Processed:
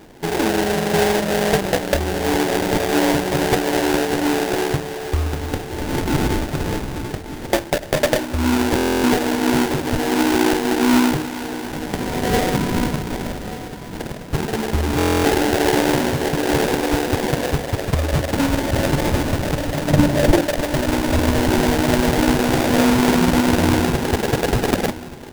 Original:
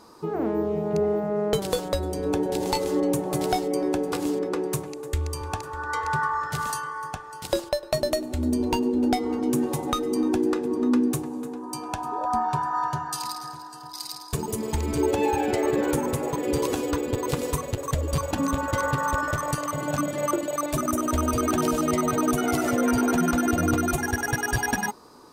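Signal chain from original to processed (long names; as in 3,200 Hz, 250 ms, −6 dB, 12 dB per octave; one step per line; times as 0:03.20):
sample-rate reduction 1,200 Hz, jitter 20%
0:19.90–0:20.42: low-shelf EQ 420 Hz +9 dB
single-tap delay 1,183 ms −15.5 dB
buffer that repeats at 0:08.76/0:14.97, samples 1,024, times 11
level +6.5 dB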